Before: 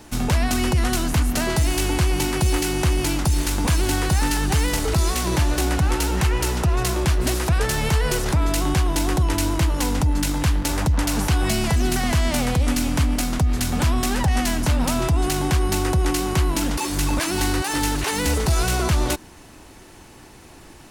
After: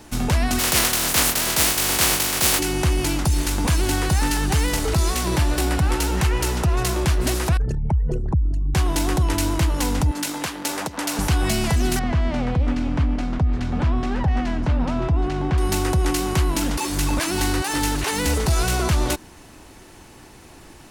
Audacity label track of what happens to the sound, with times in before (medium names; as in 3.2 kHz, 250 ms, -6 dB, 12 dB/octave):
0.580000	2.580000	spectral contrast reduction exponent 0.28
5.240000	5.950000	band-stop 6.4 kHz
7.570000	8.750000	resonances exaggerated exponent 3
10.110000	11.190000	high-pass 310 Hz
11.990000	15.580000	tape spacing loss at 10 kHz 29 dB